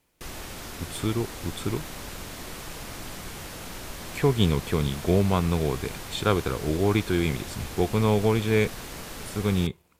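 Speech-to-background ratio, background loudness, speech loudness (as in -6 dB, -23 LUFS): 12.0 dB, -38.0 LUFS, -26.0 LUFS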